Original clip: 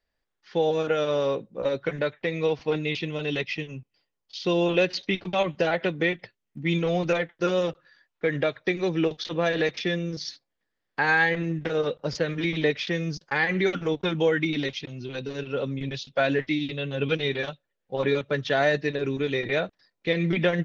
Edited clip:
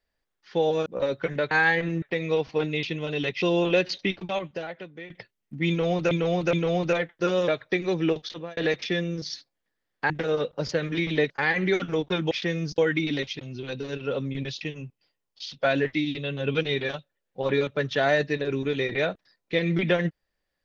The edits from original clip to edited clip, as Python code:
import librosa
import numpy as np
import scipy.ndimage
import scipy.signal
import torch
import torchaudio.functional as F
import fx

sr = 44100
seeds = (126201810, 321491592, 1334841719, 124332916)

y = fx.edit(x, sr, fx.cut(start_s=0.86, length_s=0.63),
    fx.move(start_s=3.54, length_s=0.92, to_s=16.07),
    fx.fade_out_to(start_s=5.1, length_s=1.04, curve='qua', floor_db=-17.0),
    fx.repeat(start_s=6.73, length_s=0.42, count=3),
    fx.cut(start_s=7.68, length_s=0.75),
    fx.fade_out_span(start_s=9.12, length_s=0.4),
    fx.move(start_s=11.05, length_s=0.51, to_s=2.14),
    fx.move(start_s=12.76, length_s=0.47, to_s=14.24), tone=tone)